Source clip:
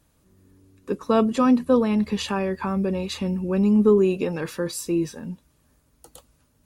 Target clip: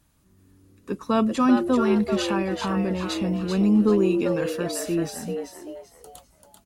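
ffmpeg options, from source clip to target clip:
ffmpeg -i in.wav -filter_complex "[0:a]equalizer=frequency=490:width_type=o:width=0.72:gain=-7,asplit=2[link_01][link_02];[link_02]asplit=4[link_03][link_04][link_05][link_06];[link_03]adelay=389,afreqshift=130,volume=-6dB[link_07];[link_04]adelay=778,afreqshift=260,volume=-15.9dB[link_08];[link_05]adelay=1167,afreqshift=390,volume=-25.8dB[link_09];[link_06]adelay=1556,afreqshift=520,volume=-35.7dB[link_10];[link_07][link_08][link_09][link_10]amix=inputs=4:normalize=0[link_11];[link_01][link_11]amix=inputs=2:normalize=0" out.wav

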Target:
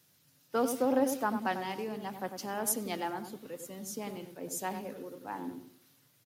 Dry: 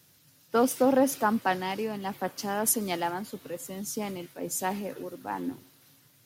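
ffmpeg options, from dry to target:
ffmpeg -i in.wav -filter_complex "[0:a]lowshelf=frequency=87:gain=-7,asplit=2[link_01][link_02];[link_02]adelay=96,lowpass=frequency=810:poles=1,volume=-5.5dB,asplit=2[link_03][link_04];[link_04]adelay=96,lowpass=frequency=810:poles=1,volume=0.36,asplit=2[link_05][link_06];[link_06]adelay=96,lowpass=frequency=810:poles=1,volume=0.36,asplit=2[link_07][link_08];[link_08]adelay=96,lowpass=frequency=810:poles=1,volume=0.36[link_09];[link_01][link_03][link_05][link_07][link_09]amix=inputs=5:normalize=0,volume=-6dB" out.wav

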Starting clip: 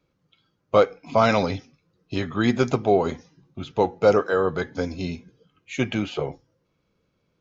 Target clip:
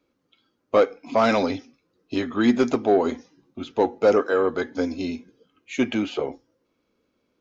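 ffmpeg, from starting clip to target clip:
ffmpeg -i in.wav -af "asoftclip=type=tanh:threshold=-9dB,lowshelf=frequency=200:width_type=q:width=3:gain=-6.5" out.wav

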